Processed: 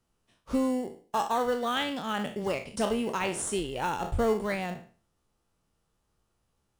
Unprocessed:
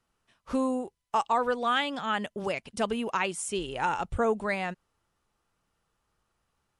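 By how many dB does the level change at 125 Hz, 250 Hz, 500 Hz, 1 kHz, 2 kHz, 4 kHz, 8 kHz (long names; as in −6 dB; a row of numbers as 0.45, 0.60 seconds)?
+3.0, +1.5, +0.5, −2.5, −3.5, −0.5, +2.0 decibels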